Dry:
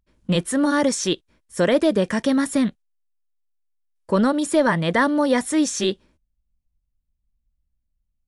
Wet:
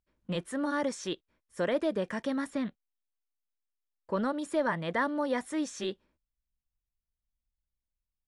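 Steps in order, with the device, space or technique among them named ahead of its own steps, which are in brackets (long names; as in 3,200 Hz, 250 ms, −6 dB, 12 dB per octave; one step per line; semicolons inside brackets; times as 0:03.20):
0:02.50–0:04.18: low-pass filter 6,000 Hz 12 dB per octave
low-shelf EQ 460 Hz −8 dB
through cloth (high-shelf EQ 3,200 Hz −12 dB)
level −7 dB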